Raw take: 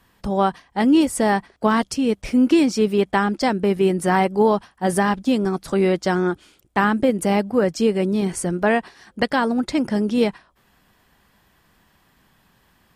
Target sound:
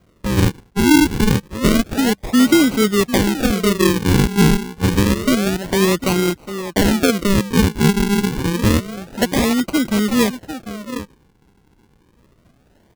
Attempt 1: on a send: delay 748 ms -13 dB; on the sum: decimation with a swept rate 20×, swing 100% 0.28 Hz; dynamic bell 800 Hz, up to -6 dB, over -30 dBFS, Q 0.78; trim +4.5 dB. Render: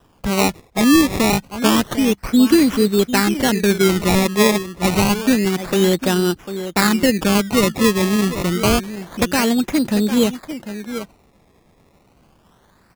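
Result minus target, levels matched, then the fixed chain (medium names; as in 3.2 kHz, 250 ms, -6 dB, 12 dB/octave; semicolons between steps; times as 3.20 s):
decimation with a swept rate: distortion -9 dB
on a send: delay 748 ms -13 dB; on the sum: decimation with a swept rate 49×, swing 100% 0.28 Hz; dynamic bell 800 Hz, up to -6 dB, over -30 dBFS, Q 0.78; trim +4.5 dB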